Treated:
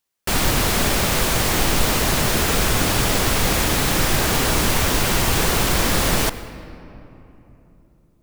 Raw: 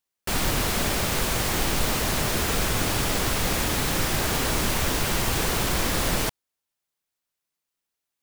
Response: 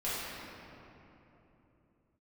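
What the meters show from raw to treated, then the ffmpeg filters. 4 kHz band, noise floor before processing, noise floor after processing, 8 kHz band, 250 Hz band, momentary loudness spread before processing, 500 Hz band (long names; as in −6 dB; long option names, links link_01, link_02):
+5.5 dB, −85 dBFS, −58 dBFS, +5.5 dB, +5.5 dB, 0 LU, +5.5 dB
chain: -filter_complex "[0:a]asplit=2[link_01][link_02];[1:a]atrim=start_sample=2205,adelay=92[link_03];[link_02][link_03]afir=irnorm=-1:irlink=0,volume=-21dB[link_04];[link_01][link_04]amix=inputs=2:normalize=0,volume=5.5dB"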